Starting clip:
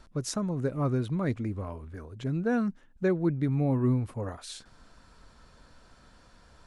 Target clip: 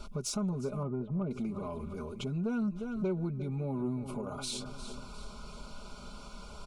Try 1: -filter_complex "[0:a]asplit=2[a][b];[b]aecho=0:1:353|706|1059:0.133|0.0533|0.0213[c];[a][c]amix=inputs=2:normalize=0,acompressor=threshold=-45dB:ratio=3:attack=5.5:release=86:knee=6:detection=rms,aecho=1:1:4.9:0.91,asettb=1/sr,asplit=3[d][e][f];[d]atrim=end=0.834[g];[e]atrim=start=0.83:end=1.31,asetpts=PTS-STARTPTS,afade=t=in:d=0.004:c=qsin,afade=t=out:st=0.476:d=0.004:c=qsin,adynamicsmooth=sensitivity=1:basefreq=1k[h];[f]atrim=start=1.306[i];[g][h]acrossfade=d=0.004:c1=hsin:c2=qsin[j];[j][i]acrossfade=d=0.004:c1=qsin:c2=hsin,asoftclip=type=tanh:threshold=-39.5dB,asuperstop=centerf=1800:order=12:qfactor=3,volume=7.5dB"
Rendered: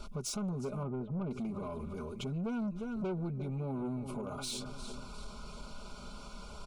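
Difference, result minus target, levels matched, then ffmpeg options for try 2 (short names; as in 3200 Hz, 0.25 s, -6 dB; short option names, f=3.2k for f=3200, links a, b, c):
soft clip: distortion +9 dB
-filter_complex "[0:a]asplit=2[a][b];[b]aecho=0:1:353|706|1059:0.133|0.0533|0.0213[c];[a][c]amix=inputs=2:normalize=0,acompressor=threshold=-45dB:ratio=3:attack=5.5:release=86:knee=6:detection=rms,aecho=1:1:4.9:0.91,asettb=1/sr,asplit=3[d][e][f];[d]atrim=end=0.834[g];[e]atrim=start=0.83:end=1.31,asetpts=PTS-STARTPTS,afade=t=in:d=0.004:c=qsin,afade=t=out:st=0.476:d=0.004:c=qsin,adynamicsmooth=sensitivity=1:basefreq=1k[h];[f]atrim=start=1.306[i];[g][h]acrossfade=d=0.004:c1=hsin:c2=qsin[j];[j][i]acrossfade=d=0.004:c1=qsin:c2=hsin,asoftclip=type=tanh:threshold=-32dB,asuperstop=centerf=1800:order=12:qfactor=3,volume=7.5dB"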